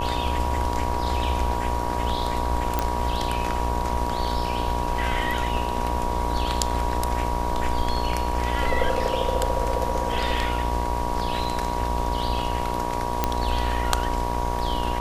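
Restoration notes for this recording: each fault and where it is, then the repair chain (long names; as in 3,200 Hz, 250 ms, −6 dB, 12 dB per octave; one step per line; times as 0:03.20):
mains buzz 60 Hz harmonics 19 −30 dBFS
whistle 960 Hz −30 dBFS
0:02.79: click −8 dBFS
0:13.24: click −6 dBFS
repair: click removal
hum removal 60 Hz, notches 19
notch filter 960 Hz, Q 30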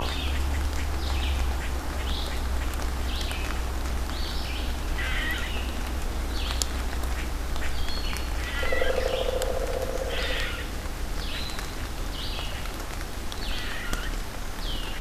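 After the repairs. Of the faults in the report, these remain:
none of them is left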